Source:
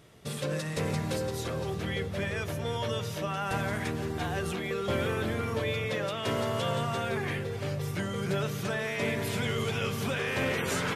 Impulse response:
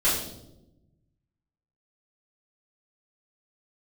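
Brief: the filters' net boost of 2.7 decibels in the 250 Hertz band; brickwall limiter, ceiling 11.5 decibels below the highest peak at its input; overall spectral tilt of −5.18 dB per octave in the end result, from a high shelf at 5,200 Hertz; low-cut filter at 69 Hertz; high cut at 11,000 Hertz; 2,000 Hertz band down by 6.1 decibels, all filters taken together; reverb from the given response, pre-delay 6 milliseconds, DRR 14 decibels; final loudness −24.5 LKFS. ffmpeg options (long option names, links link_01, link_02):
-filter_complex "[0:a]highpass=69,lowpass=11000,equalizer=frequency=250:width_type=o:gain=4,equalizer=frequency=2000:width_type=o:gain=-9,highshelf=frequency=5200:gain=6.5,alimiter=level_in=4.5dB:limit=-24dB:level=0:latency=1,volume=-4.5dB,asplit=2[link_01][link_02];[1:a]atrim=start_sample=2205,adelay=6[link_03];[link_02][link_03]afir=irnorm=-1:irlink=0,volume=-27.5dB[link_04];[link_01][link_04]amix=inputs=2:normalize=0,volume=12.5dB"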